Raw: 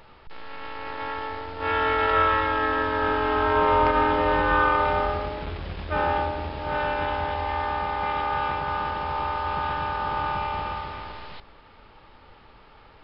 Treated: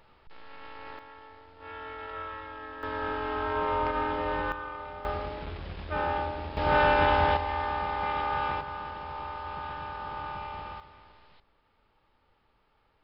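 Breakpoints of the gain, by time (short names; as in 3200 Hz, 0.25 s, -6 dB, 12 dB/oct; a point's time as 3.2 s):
-9 dB
from 0.99 s -18 dB
from 2.83 s -8.5 dB
from 4.52 s -18 dB
from 5.05 s -5.5 dB
from 6.57 s +4 dB
from 7.37 s -3.5 dB
from 8.61 s -10 dB
from 10.8 s -18 dB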